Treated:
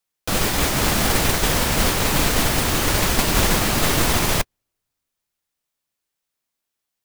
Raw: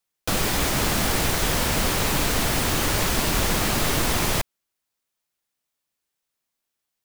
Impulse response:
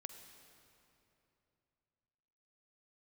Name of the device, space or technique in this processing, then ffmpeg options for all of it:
keyed gated reverb: -filter_complex "[0:a]asplit=3[a][b][c];[1:a]atrim=start_sample=2205[d];[b][d]afir=irnorm=-1:irlink=0[e];[c]apad=whole_len=310550[f];[e][f]sidechaingate=range=-54dB:threshold=-20dB:ratio=16:detection=peak,volume=6.5dB[g];[a][g]amix=inputs=2:normalize=0"

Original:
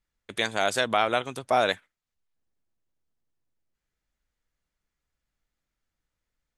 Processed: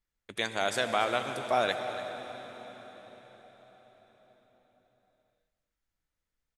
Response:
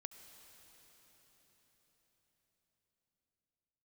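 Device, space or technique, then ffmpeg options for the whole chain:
cave: -filter_complex "[0:a]aecho=1:1:286:0.178[a];[1:a]atrim=start_sample=2205[b];[a][b]afir=irnorm=-1:irlink=0,volume=1dB"

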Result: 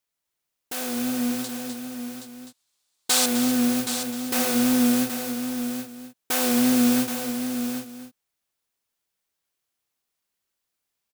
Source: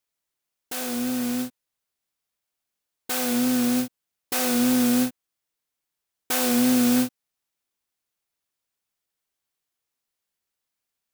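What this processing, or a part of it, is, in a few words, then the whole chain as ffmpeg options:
ducked delay: -filter_complex "[0:a]asettb=1/sr,asplit=3[a][b][c];[a]atrim=end=1.444[d];[b]atrim=start=1.44:end=3.26,asetpts=PTS-STARTPTS,afade=t=in:d=0.004:c=qsin,afade=t=out:st=1.816:d=0.004:c=qsin,equalizer=f=1k:t=o:w=1:g=5,equalizer=f=4k:t=o:w=1:g=10,equalizer=f=8k:t=o:w=1:g=10[e];[c]atrim=start=3.256[f];[d][e]acrossfade=d=0.004:c1=hsin:c2=qsin[g];[g][f]acrossfade=d=0.004:c1=qsin:c2=hsin,asplit=3[h][i][j];[i]adelay=254,volume=-3dB[k];[j]apad=whole_len=502091[l];[k][l]sidechaincompress=threshold=-27dB:ratio=5:attack=5.3:release=1130[m];[h][m]amix=inputs=2:normalize=0,aecho=1:1:773:0.376"

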